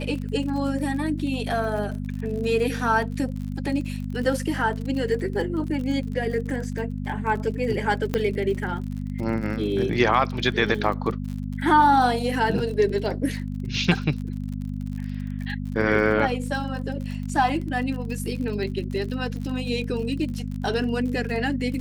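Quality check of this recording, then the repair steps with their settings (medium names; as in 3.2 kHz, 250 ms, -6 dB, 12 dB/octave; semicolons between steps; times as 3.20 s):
crackle 47 per s -32 dBFS
hum 50 Hz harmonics 5 -30 dBFS
8.14 s: pop -10 dBFS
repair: de-click; de-hum 50 Hz, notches 5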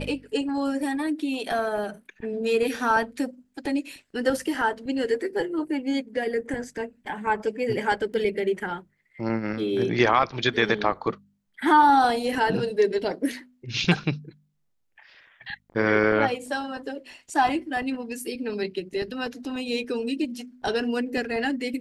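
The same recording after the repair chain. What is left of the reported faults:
8.14 s: pop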